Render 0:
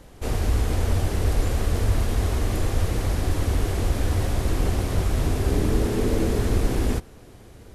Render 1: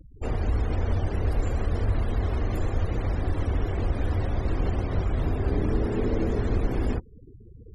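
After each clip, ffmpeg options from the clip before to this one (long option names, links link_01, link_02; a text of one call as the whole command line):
ffmpeg -i in.wav -filter_complex "[0:a]afftfilt=real='re*gte(hypot(re,im),0.0178)':imag='im*gte(hypot(re,im),0.0178)':win_size=1024:overlap=0.75,asplit=2[link_01][link_02];[link_02]acompressor=threshold=-30dB:ratio=6,volume=-1dB[link_03];[link_01][link_03]amix=inputs=2:normalize=0,volume=-5dB" out.wav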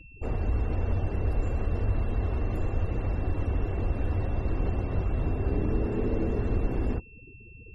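ffmpeg -i in.wav -af "aeval=exprs='val(0)+0.00631*sin(2*PI*2700*n/s)':channel_layout=same,highshelf=frequency=2100:gain=-9.5,volume=-2dB" out.wav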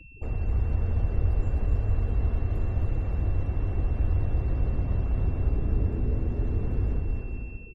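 ffmpeg -i in.wav -filter_complex "[0:a]acrossover=split=160[link_01][link_02];[link_02]acompressor=threshold=-48dB:ratio=2[link_03];[link_01][link_03]amix=inputs=2:normalize=0,aecho=1:1:260|442|569.4|658.6|721:0.631|0.398|0.251|0.158|0.1,volume=1dB" out.wav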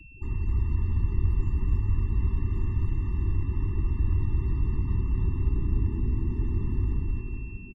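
ffmpeg -i in.wav -filter_complex "[0:a]asplit=5[link_01][link_02][link_03][link_04][link_05];[link_02]adelay=416,afreqshift=71,volume=-22dB[link_06];[link_03]adelay=832,afreqshift=142,volume=-27.2dB[link_07];[link_04]adelay=1248,afreqshift=213,volume=-32.4dB[link_08];[link_05]adelay=1664,afreqshift=284,volume=-37.6dB[link_09];[link_01][link_06][link_07][link_08][link_09]amix=inputs=5:normalize=0,afftfilt=real='re*eq(mod(floor(b*sr/1024/430),2),0)':imag='im*eq(mod(floor(b*sr/1024/430),2),0)':win_size=1024:overlap=0.75" out.wav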